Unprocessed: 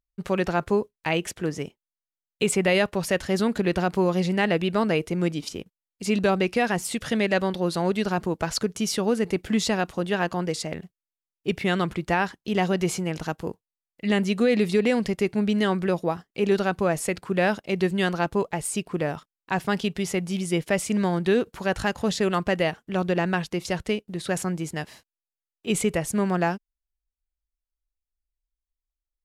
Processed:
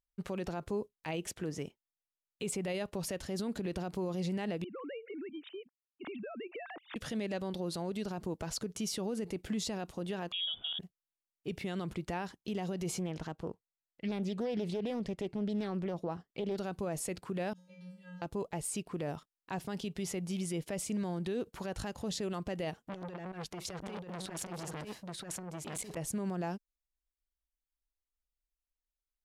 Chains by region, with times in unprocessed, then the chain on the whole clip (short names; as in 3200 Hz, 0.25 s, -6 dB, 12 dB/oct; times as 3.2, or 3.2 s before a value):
4.64–6.96 sine-wave speech + compressor 16:1, threshold -33 dBFS
10.32–10.79 tilt -3 dB/oct + inverted band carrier 3500 Hz
12.99–16.58 LPF 3300 Hz 6 dB/oct + Doppler distortion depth 0.31 ms
17.53–18.22 compressor 10:1, threshold -27 dBFS + resonator 180 Hz, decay 0.66 s, harmonics odd, mix 100%
22.83–25.97 negative-ratio compressor -28 dBFS, ratio -0.5 + echo 0.938 s -4 dB + core saturation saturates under 2000 Hz
whole clip: dynamic EQ 1700 Hz, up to -7 dB, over -40 dBFS, Q 0.87; limiter -21 dBFS; gain -6.5 dB